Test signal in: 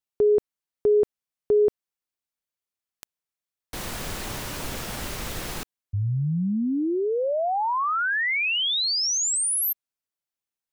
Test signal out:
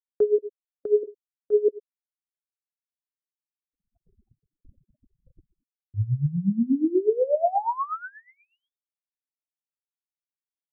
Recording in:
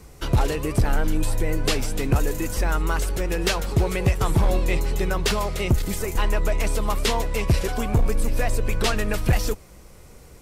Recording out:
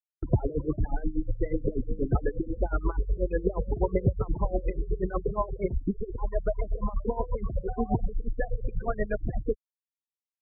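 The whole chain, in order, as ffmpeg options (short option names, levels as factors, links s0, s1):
-filter_complex "[0:a]acrossover=split=860[s0][s1];[s0]alimiter=limit=0.106:level=0:latency=1:release=207[s2];[s1]acompressor=threshold=0.0112:ratio=12:attack=50:release=53:knee=1:detection=rms[s3];[s2][s3]amix=inputs=2:normalize=0,lowshelf=f=120:g=-6,asplit=2[s4][s5];[s5]adelay=109,lowpass=f=2100:p=1,volume=0.15,asplit=2[s6][s7];[s7]adelay=109,lowpass=f=2100:p=1,volume=0.36,asplit=2[s8][s9];[s9]adelay=109,lowpass=f=2100:p=1,volume=0.36[s10];[s4][s6][s8][s10]amix=inputs=4:normalize=0,adynamicsmooth=sensitivity=4:basefreq=2400,highshelf=f=6500:g=-2.5,bandreject=f=81.56:t=h:w=4,bandreject=f=163.12:t=h:w=4,bandreject=f=244.68:t=h:w=4,bandreject=f=326.24:t=h:w=4,bandreject=f=407.8:t=h:w=4,bandreject=f=489.36:t=h:w=4,bandreject=f=570.92:t=h:w=4,bandreject=f=652.48:t=h:w=4,bandreject=f=734.04:t=h:w=4,bandreject=f=815.6:t=h:w=4,afftfilt=real='re*gte(hypot(re,im),0.0794)':imag='im*gte(hypot(re,im),0.0794)':win_size=1024:overlap=0.75,agate=range=0.00447:threshold=0.0282:ratio=3:release=499:detection=rms,aeval=exprs='val(0)*pow(10,-18*(0.5-0.5*cos(2*PI*8.3*n/s))/20)':c=same,volume=2.51"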